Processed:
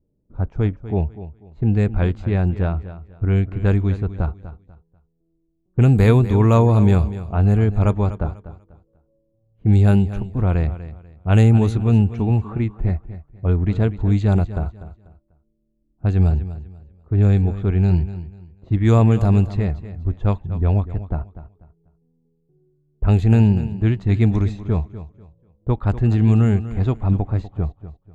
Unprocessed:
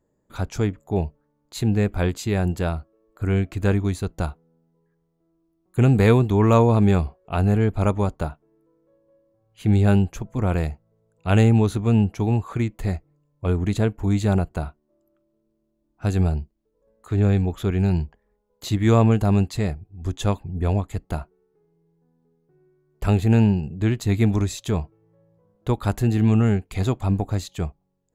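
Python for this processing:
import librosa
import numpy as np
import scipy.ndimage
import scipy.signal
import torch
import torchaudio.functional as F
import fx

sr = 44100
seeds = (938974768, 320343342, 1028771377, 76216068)

y = fx.env_lowpass(x, sr, base_hz=410.0, full_db=-12.5)
y = fx.low_shelf(y, sr, hz=110.0, db=10.5)
y = fx.echo_feedback(y, sr, ms=245, feedback_pct=27, wet_db=-14.0)
y = F.gain(torch.from_numpy(y), -1.0).numpy()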